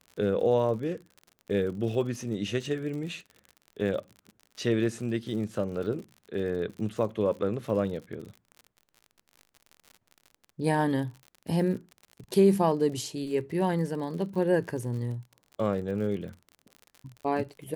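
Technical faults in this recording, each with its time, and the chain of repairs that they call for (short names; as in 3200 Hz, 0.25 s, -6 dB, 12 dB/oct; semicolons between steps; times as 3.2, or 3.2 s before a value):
crackle 52/s -38 dBFS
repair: de-click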